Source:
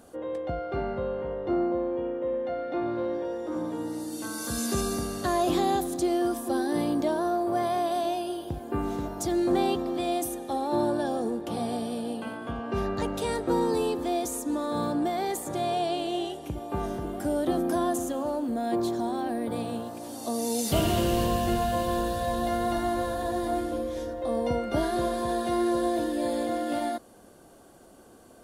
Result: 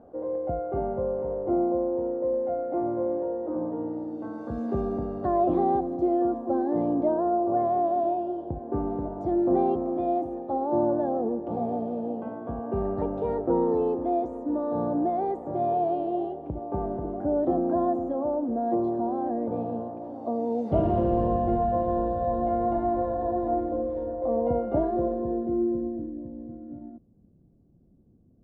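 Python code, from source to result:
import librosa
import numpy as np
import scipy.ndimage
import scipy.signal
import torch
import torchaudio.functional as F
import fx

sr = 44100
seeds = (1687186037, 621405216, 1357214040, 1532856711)

y = fx.filter_sweep_lowpass(x, sr, from_hz=710.0, to_hz=160.0, start_s=24.73, end_s=26.29, q=1.4)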